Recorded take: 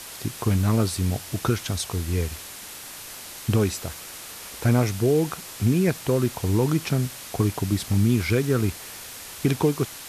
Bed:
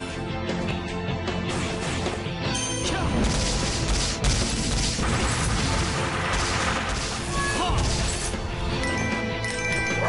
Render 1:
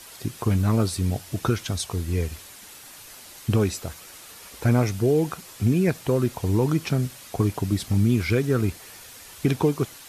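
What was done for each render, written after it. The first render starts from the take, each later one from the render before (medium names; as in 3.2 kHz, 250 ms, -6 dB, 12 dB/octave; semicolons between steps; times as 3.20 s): noise reduction 7 dB, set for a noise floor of -40 dBFS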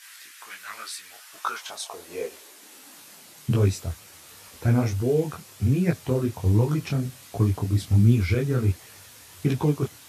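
high-pass sweep 1.7 kHz -> 87 Hz, 1.01–3.85 s; detune thickener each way 47 cents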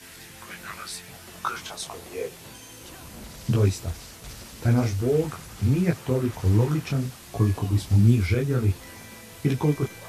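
add bed -19.5 dB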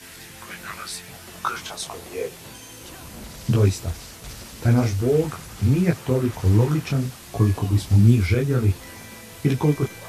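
trim +3 dB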